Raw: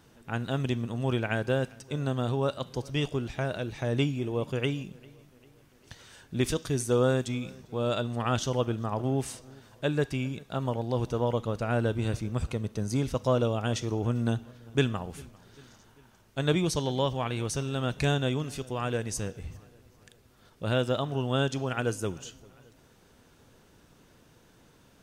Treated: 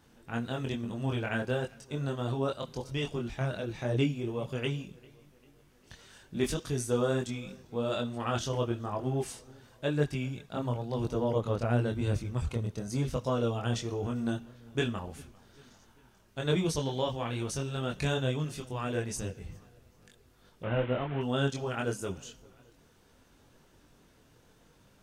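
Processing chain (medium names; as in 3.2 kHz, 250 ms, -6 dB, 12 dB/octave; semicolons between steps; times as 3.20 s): 20.63–21.21 s: one-bit delta coder 16 kbps, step -32.5 dBFS; chorus voices 4, 0.98 Hz, delay 23 ms, depth 3 ms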